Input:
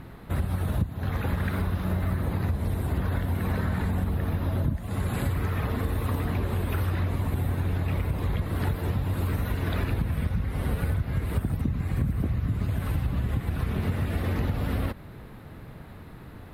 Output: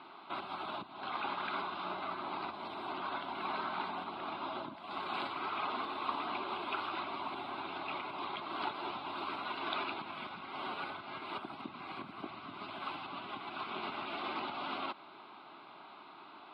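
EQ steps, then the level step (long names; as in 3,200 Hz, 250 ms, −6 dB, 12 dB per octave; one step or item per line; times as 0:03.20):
Chebyshev band-pass filter 380–4,700 Hz, order 3
phaser with its sweep stopped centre 1,800 Hz, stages 6
+3.5 dB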